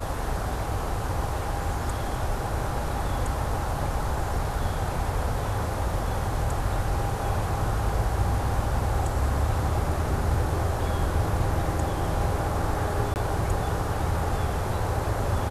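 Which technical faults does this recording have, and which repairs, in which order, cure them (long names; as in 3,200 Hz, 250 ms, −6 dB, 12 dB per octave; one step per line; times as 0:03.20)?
0:13.14–0:13.16: drop-out 19 ms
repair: repair the gap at 0:13.14, 19 ms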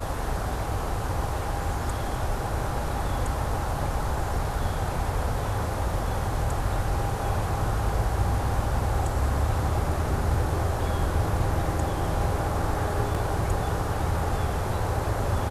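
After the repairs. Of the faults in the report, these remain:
none of them is left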